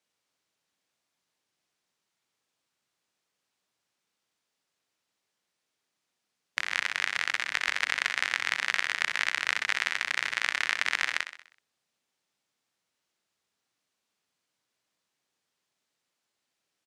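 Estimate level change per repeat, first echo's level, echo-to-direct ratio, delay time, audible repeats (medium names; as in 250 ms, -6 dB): -5.5 dB, -10.5 dB, -9.0 dB, 63 ms, 5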